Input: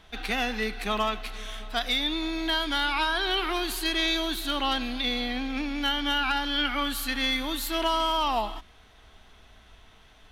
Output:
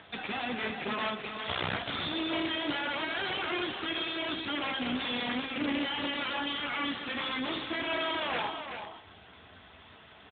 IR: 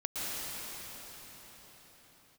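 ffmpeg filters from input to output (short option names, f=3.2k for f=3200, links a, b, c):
-filter_complex "[0:a]bandreject=f=53.31:t=h:w=4,bandreject=f=106.62:t=h:w=4,bandreject=f=159.93:t=h:w=4,bandreject=f=213.24:t=h:w=4,bandreject=f=266.55:t=h:w=4,bandreject=f=319.86:t=h:w=4,bandreject=f=373.17:t=h:w=4,bandreject=f=426.48:t=h:w=4,bandreject=f=479.79:t=h:w=4,bandreject=f=533.1:t=h:w=4,bandreject=f=586.41:t=h:w=4,bandreject=f=639.72:t=h:w=4,bandreject=f=693.03:t=h:w=4,bandreject=f=746.34:t=h:w=4,bandreject=f=799.65:t=h:w=4,bandreject=f=852.96:t=h:w=4,bandreject=f=906.27:t=h:w=4,bandreject=f=959.58:t=h:w=4,bandreject=f=1.01289k:t=h:w=4,bandreject=f=1.0662k:t=h:w=4,bandreject=f=1.11951k:t=h:w=4,bandreject=f=1.17282k:t=h:w=4,bandreject=f=1.22613k:t=h:w=4,asplit=3[a][b][c];[a]afade=t=out:st=1.47:d=0.02[d];[b]asubboost=boost=7.5:cutoff=58,afade=t=in:st=1.47:d=0.02,afade=t=out:st=2.06:d=0.02[e];[c]afade=t=in:st=2.06:d=0.02[f];[d][e][f]amix=inputs=3:normalize=0,asplit=2[g][h];[h]acompressor=threshold=-37dB:ratio=5,volume=-1.5dB[i];[g][i]amix=inputs=2:normalize=0,alimiter=limit=-18.5dB:level=0:latency=1:release=128,acrossover=split=230|2900[j][k][l];[k]acompressor=mode=upward:threshold=-49dB:ratio=2.5[m];[j][m][l]amix=inputs=3:normalize=0,aeval=exprs='(mod(14.1*val(0)+1,2)-1)/14.1':c=same,flanger=delay=9.8:depth=8.6:regen=-39:speed=0.22:shape=triangular,asettb=1/sr,asplit=3[n][o][p];[n]atrim=end=6.224[q];[o]atrim=start=6.22:end=7.13,asetpts=PTS-STARTPTS,afade=t=in:d=0.004:c=qsin,afade=t=out:st=0.906:d=0.004:c=qsin,aeval=exprs='clip(val(0),-1,0.0266)':c=same[r];[p]atrim=start=7.126[s];[q][r]acrossfade=d=0.004:c1=hsin:c2=qsin[t];[t][s]acrossfade=d=0.004:c1=qsin:c2=hsin,aecho=1:1:380:0.398,volume=3dB" -ar 8000 -c:a libopencore_amrnb -b:a 12200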